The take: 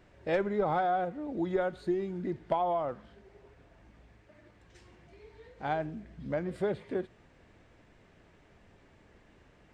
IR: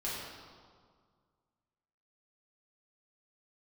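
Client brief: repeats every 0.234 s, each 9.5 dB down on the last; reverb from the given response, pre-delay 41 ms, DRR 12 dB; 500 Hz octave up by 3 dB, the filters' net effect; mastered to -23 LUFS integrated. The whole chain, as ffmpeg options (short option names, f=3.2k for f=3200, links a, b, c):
-filter_complex "[0:a]equalizer=f=500:t=o:g=4,aecho=1:1:234|468|702|936:0.335|0.111|0.0365|0.012,asplit=2[a][b];[1:a]atrim=start_sample=2205,adelay=41[c];[b][c]afir=irnorm=-1:irlink=0,volume=-16dB[d];[a][d]amix=inputs=2:normalize=0,volume=7dB"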